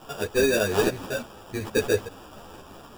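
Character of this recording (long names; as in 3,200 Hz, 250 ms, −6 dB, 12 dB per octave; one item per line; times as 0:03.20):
a quantiser's noise floor 8 bits, dither triangular
phaser sweep stages 4, 0.7 Hz, lowest notch 640–4,800 Hz
aliases and images of a low sample rate 2,100 Hz, jitter 0%
a shimmering, thickened sound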